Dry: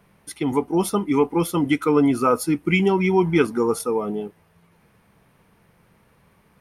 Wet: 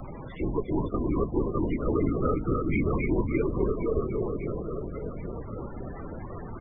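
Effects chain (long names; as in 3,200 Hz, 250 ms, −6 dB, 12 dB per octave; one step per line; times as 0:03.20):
converter with a step at zero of −30 dBFS
dynamic equaliser 690 Hz, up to −3 dB, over −39 dBFS, Q 4.2
asymmetric clip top −14 dBFS, bottom −6 dBFS
high-frequency loss of the air 200 metres
reverse bouncing-ball delay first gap 270 ms, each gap 1.3×, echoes 5
linear-prediction vocoder at 8 kHz whisper
spectral peaks only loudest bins 32
multiband upward and downward compressor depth 40%
level −8 dB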